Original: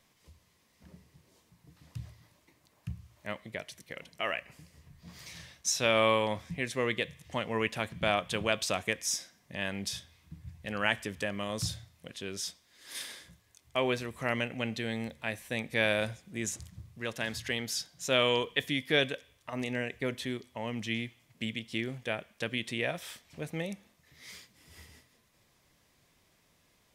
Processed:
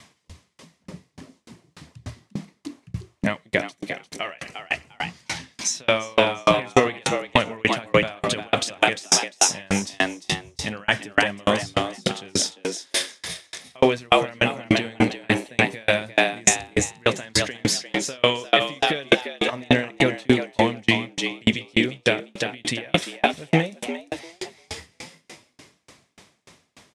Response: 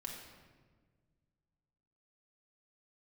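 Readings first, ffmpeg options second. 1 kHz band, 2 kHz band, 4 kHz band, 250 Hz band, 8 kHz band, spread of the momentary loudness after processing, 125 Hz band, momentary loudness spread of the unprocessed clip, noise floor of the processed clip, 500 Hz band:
+12.0 dB, +10.0 dB, +10.5 dB, +12.0 dB, +13.0 dB, 16 LU, +10.0 dB, 18 LU, -67 dBFS, +10.0 dB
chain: -filter_complex "[0:a]highpass=87,flanger=delay=0.9:depth=6.4:regen=-63:speed=1.5:shape=sinusoidal,lowpass=f=9.7k:w=0.5412,lowpass=f=9.7k:w=1.3066,asplit=2[a][b];[b]asplit=5[c][d][e][f][g];[c]adelay=349,afreqshift=85,volume=-4dB[h];[d]adelay=698,afreqshift=170,volume=-12.4dB[i];[e]adelay=1047,afreqshift=255,volume=-20.8dB[j];[f]adelay=1396,afreqshift=340,volume=-29.2dB[k];[g]adelay=1745,afreqshift=425,volume=-37.6dB[l];[h][i][j][k][l]amix=inputs=5:normalize=0[m];[a][m]amix=inputs=2:normalize=0,alimiter=level_in=26.5dB:limit=-1dB:release=50:level=0:latency=1,aeval=exprs='val(0)*pow(10,-37*if(lt(mod(3.4*n/s,1),2*abs(3.4)/1000),1-mod(3.4*n/s,1)/(2*abs(3.4)/1000),(mod(3.4*n/s,1)-2*abs(3.4)/1000)/(1-2*abs(3.4)/1000))/20)':c=same"

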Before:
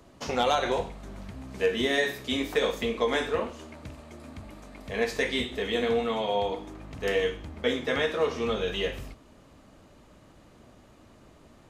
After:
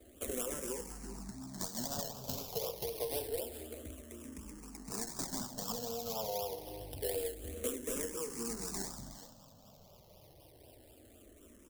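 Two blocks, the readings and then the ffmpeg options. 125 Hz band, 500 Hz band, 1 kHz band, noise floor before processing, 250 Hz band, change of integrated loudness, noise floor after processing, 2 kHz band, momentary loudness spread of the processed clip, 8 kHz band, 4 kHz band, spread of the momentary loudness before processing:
-8.0 dB, -13.0 dB, -14.5 dB, -55 dBFS, -11.0 dB, -11.5 dB, -60 dBFS, -22.5 dB, 22 LU, +6.0 dB, -13.0 dB, 19 LU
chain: -filter_complex "[0:a]acrossover=split=340|1000[a][b][c];[c]acrusher=samples=29:mix=1:aa=0.000001:lfo=1:lforange=17.4:lforate=4[d];[a][b][d]amix=inputs=3:normalize=0,bass=f=250:g=-1,treble=f=4k:g=12,aecho=1:1:384:0.1,acrossover=split=1400|4200[e][f][g];[e]acompressor=threshold=-34dB:ratio=4[h];[f]acompressor=threshold=-55dB:ratio=4[i];[g]acompressor=threshold=-40dB:ratio=4[j];[h][i][j]amix=inputs=3:normalize=0,highshelf=f=2.3k:g=7.5,asplit=2[k][l];[l]afreqshift=-0.27[m];[k][m]amix=inputs=2:normalize=1,volume=-2dB"

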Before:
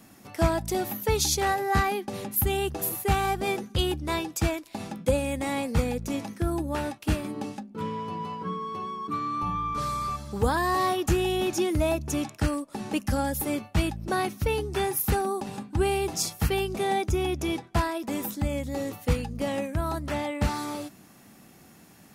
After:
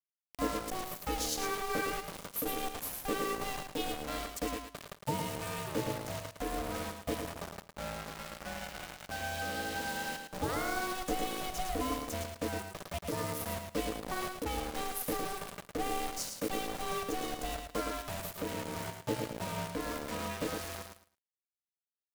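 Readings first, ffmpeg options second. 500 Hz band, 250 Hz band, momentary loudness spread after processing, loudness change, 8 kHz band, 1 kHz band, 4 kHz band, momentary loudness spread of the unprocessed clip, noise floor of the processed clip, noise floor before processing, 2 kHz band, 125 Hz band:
-9.5 dB, -10.0 dB, 7 LU, -9.0 dB, -6.5 dB, -8.5 dB, -6.0 dB, 8 LU, under -85 dBFS, -53 dBFS, -5.5 dB, -13.5 dB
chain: -af "acrusher=bits=4:mix=0:aa=0.000001,aecho=1:1:109|218|327:0.501|0.105|0.0221,aeval=exprs='val(0)*sin(2*PI*380*n/s)':c=same,volume=-8dB"

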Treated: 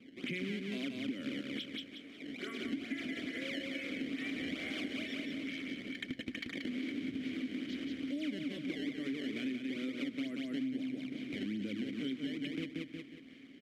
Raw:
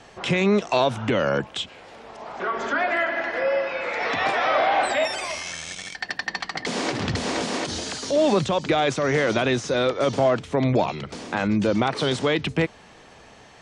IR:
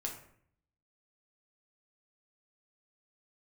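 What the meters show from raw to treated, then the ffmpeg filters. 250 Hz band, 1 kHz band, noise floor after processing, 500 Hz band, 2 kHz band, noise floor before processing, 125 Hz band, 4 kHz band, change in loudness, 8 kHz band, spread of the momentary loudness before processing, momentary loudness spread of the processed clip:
-9.5 dB, -34.5 dB, -54 dBFS, -24.0 dB, -16.5 dB, -49 dBFS, -21.0 dB, -14.0 dB, -16.0 dB, -24.0 dB, 10 LU, 4 LU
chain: -filter_complex "[0:a]acrusher=samples=21:mix=1:aa=0.000001:lfo=1:lforange=33.6:lforate=2.3,asplit=3[a][b][c];[a]bandpass=f=270:t=q:w=8,volume=0dB[d];[b]bandpass=f=2.29k:t=q:w=8,volume=-6dB[e];[c]bandpass=f=3.01k:t=q:w=8,volume=-9dB[f];[d][e][f]amix=inputs=3:normalize=0,asplit=2[g][h];[h]aecho=0:1:181|362|543|724:0.596|0.197|0.0649|0.0214[i];[g][i]amix=inputs=2:normalize=0,aresample=32000,aresample=44100,bandreject=f=63.19:t=h:w=4,bandreject=f=126.38:t=h:w=4,acompressor=threshold=-41dB:ratio=5,volume=4.5dB"

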